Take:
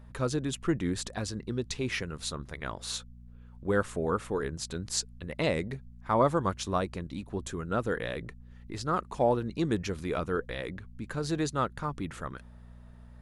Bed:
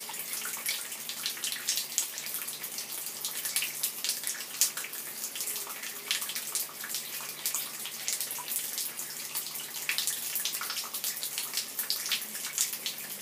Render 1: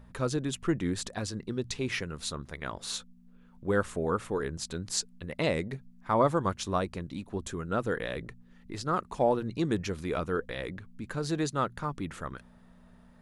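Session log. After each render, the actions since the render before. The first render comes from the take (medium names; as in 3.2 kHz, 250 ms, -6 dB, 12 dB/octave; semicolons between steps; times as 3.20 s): de-hum 60 Hz, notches 2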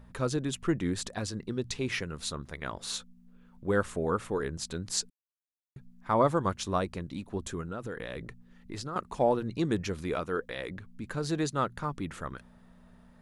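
5.10–5.76 s: mute; 7.61–8.96 s: compression, threshold -33 dBFS; 10.15–10.71 s: bass shelf 180 Hz -8 dB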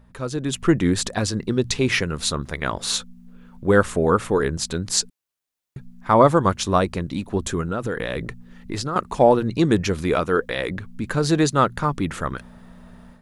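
level rider gain up to 12 dB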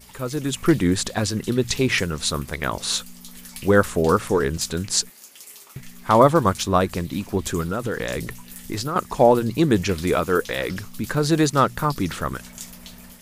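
add bed -8.5 dB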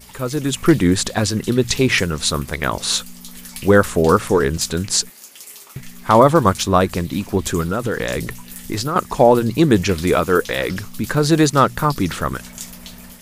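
trim +4.5 dB; peak limiter -1 dBFS, peak gain reduction 2.5 dB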